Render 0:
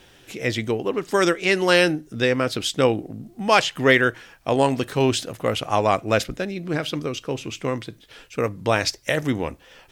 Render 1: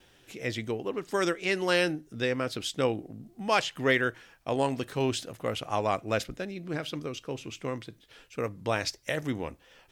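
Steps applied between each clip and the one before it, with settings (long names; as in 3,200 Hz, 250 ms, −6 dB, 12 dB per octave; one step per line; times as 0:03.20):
noise gate with hold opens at −44 dBFS
level −8.5 dB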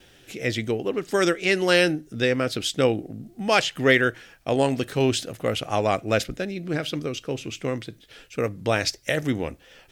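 parametric band 1,000 Hz −7 dB 0.5 octaves
level +7 dB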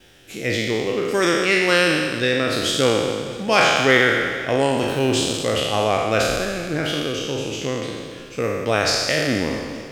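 peak hold with a decay on every bin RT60 1.62 s
feedback echo with a swinging delay time 217 ms, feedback 62%, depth 95 cents, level −16 dB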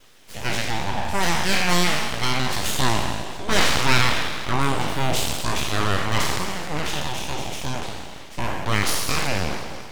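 full-wave rectification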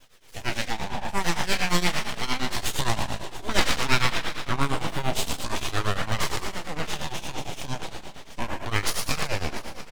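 flanger 0.33 Hz, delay 1.1 ms, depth 6.3 ms, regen −50%
shaped tremolo triangle 8.7 Hz, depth 90%
single-tap delay 690 ms −19 dB
level +3.5 dB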